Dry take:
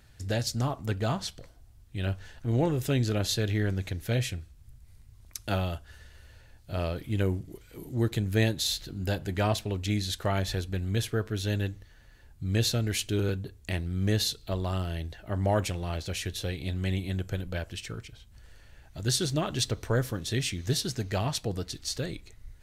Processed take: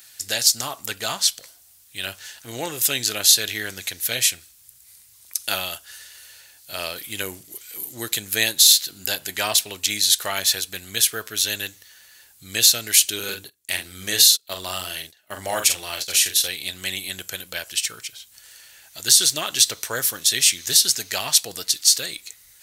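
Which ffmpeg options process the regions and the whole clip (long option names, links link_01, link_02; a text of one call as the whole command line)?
ffmpeg -i in.wav -filter_complex "[0:a]asettb=1/sr,asplit=3[link_01][link_02][link_03];[link_01]atrim=end=13.194[link_04];[link_02]atrim=start=13.19:end=16.48,asetpts=PTS-STARTPTS,afade=type=in:duration=0.004:curve=qsin,afade=type=out:start_time=3.286:duration=0.004:curve=qsin,bandreject=frequency=60:width_type=h:width=6,bandreject=frequency=120:width_type=h:width=6,bandreject=frequency=180:width_type=h:width=6,bandreject=frequency=240:width_type=h:width=6,bandreject=frequency=300:width_type=h:width=6,bandreject=frequency=360:width_type=h:width=6,bandreject=frequency=420:width_type=h:width=6,asplit=2[link_05][link_06];[link_06]adelay=44,volume=-6.5dB[link_07];[link_05][link_07]amix=inputs=2:normalize=0,atrim=end_sample=145089,agate=range=-21dB:threshold=-38dB:ratio=16:release=100:detection=peak[link_08];[link_03]atrim=start=16.476[link_09];[link_04][link_08]acrossfade=duration=0.004:curve1=hsin:curve2=qsin[link_10];[link_10][link_09]acrossfade=duration=0.004:curve1=qsin:curve2=hsin,aderivative,alimiter=level_in=22dB:limit=-1dB:release=50:level=0:latency=1,volume=-1dB" out.wav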